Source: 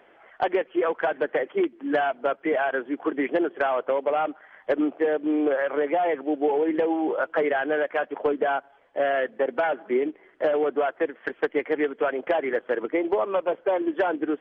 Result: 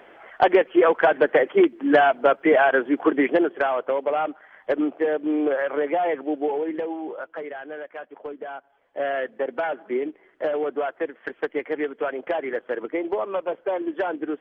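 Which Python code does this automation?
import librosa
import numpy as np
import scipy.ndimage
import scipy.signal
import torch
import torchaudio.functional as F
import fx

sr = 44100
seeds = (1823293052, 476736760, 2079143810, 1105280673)

y = fx.gain(x, sr, db=fx.line((3.05, 7.0), (3.75, 0.5), (6.23, 0.5), (7.48, -11.0), (8.52, -11.0), (9.05, -2.0)))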